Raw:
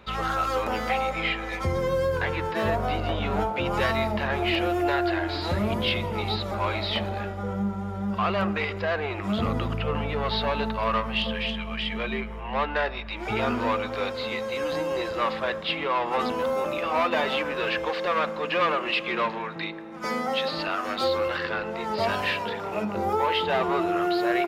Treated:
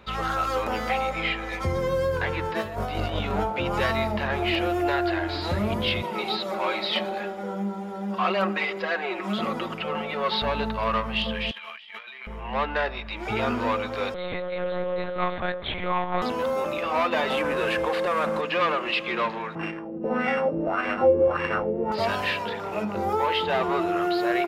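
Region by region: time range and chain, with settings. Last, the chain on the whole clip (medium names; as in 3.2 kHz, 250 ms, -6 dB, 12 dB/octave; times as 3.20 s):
2.61–3.32 s: treble shelf 4.6 kHz +7 dB + compressor with a negative ratio -28 dBFS, ratio -0.5
6.02–10.42 s: high-pass 270 Hz + comb 5.4 ms, depth 76%
11.51–12.27 s: high-pass 1.2 kHz + compressor with a negative ratio -42 dBFS + peaking EQ 7.8 kHz -4.5 dB 0.97 oct
14.14–16.22 s: Butterworth band-stop 2.8 kHz, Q 6.7 + monotone LPC vocoder at 8 kHz 180 Hz
17.30–18.41 s: CVSD coder 64 kbps + treble shelf 3 kHz -9.5 dB + level flattener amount 70%
19.55–21.92 s: sorted samples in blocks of 16 samples + bass shelf 460 Hz +5 dB + LFO low-pass sine 1.7 Hz 410–2100 Hz
whole clip: none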